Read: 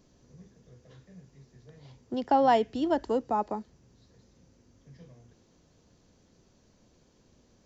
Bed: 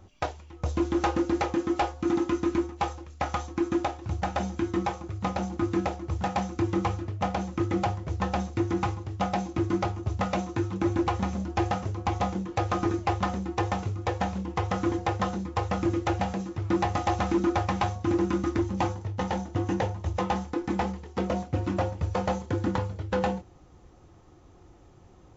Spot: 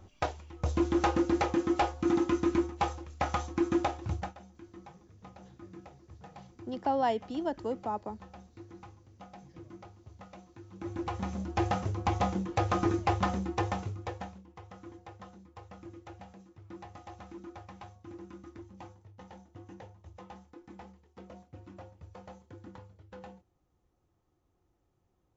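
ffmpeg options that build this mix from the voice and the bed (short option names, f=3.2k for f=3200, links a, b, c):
-filter_complex "[0:a]adelay=4550,volume=-6dB[a];[1:a]volume=19.5dB,afade=t=out:st=4.08:d=0.27:silence=0.0891251,afade=t=in:st=10.65:d=1.16:silence=0.0891251,afade=t=out:st=13.39:d=1.03:silence=0.1[b];[a][b]amix=inputs=2:normalize=0"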